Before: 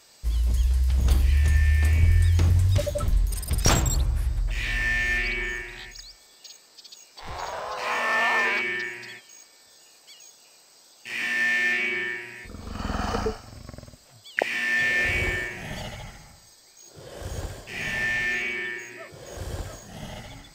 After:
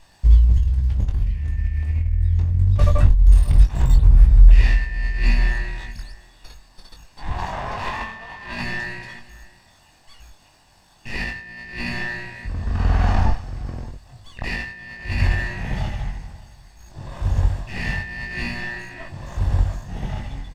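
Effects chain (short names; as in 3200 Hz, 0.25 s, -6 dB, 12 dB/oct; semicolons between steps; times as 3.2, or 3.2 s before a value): minimum comb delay 1.1 ms; low shelf 410 Hz -6 dB; negative-ratio compressor -30 dBFS, ratio -0.5; RIAA curve playback; doubler 22 ms -5 dB; echo 0.58 s -21.5 dB; gain +1.5 dB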